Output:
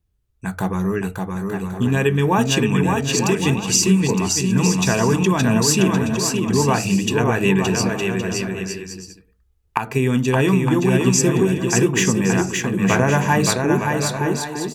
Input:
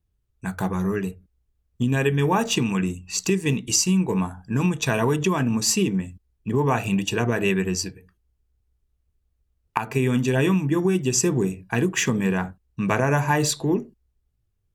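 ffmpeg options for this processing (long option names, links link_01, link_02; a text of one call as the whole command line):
ffmpeg -i in.wav -af "aecho=1:1:570|912|1117|1240|1314:0.631|0.398|0.251|0.158|0.1,volume=3dB" out.wav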